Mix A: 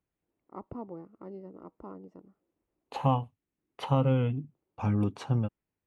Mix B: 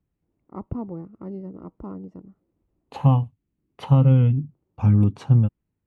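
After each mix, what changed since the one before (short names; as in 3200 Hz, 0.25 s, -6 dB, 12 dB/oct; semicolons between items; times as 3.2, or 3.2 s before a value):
first voice +3.5 dB; master: add tone controls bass +13 dB, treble 0 dB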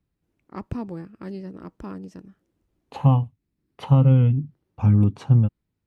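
first voice: remove polynomial smoothing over 65 samples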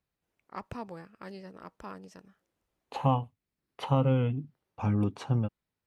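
first voice: add bell 320 Hz -10 dB 0.85 oct; master: add tone controls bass -13 dB, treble 0 dB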